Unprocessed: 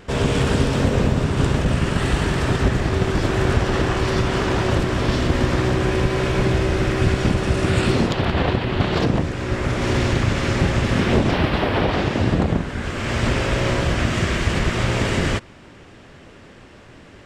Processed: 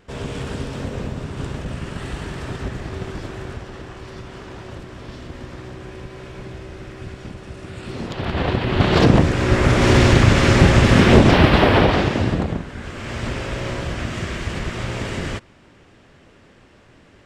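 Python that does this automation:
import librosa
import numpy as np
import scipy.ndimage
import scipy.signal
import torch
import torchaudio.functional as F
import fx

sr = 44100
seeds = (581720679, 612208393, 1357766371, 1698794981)

y = fx.gain(x, sr, db=fx.line((3.07, -9.5), (3.76, -16.0), (7.79, -16.0), (8.29, -3.5), (9.08, 6.5), (11.71, 6.5), (12.65, -6.0)))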